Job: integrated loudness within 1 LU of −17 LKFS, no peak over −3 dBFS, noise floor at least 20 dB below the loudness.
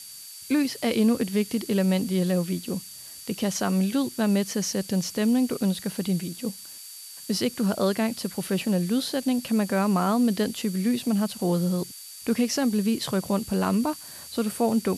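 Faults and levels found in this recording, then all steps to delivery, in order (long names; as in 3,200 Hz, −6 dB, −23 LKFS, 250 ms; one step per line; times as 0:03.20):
interfering tone 4,600 Hz; level of the tone −46 dBFS; background noise floor −43 dBFS; target noise floor −46 dBFS; integrated loudness −25.5 LKFS; sample peak −12.0 dBFS; target loudness −17.0 LKFS
→ notch filter 4,600 Hz, Q 30
noise reduction from a noise print 6 dB
level +8.5 dB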